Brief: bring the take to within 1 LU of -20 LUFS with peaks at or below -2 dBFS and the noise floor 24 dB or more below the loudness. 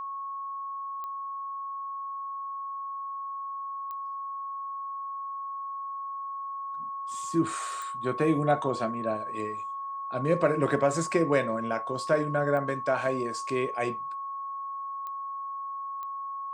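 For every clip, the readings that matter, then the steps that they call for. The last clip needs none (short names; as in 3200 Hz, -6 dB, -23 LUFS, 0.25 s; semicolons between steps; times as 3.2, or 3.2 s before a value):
clicks 6; steady tone 1100 Hz; tone level -33 dBFS; loudness -31.0 LUFS; peak -11.0 dBFS; loudness target -20.0 LUFS
-> de-click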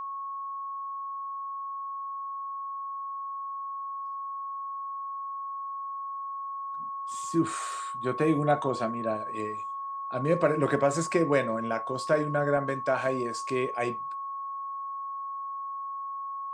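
clicks 0; steady tone 1100 Hz; tone level -33 dBFS
-> notch 1100 Hz, Q 30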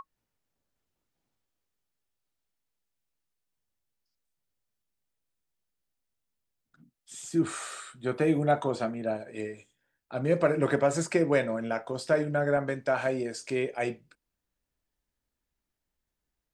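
steady tone none; loudness -29.0 LUFS; peak -11.5 dBFS; loudness target -20.0 LUFS
-> gain +9 dB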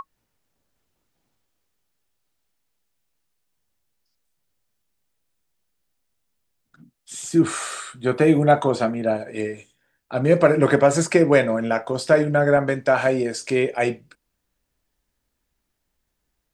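loudness -20.0 LUFS; peak -2.5 dBFS; noise floor -77 dBFS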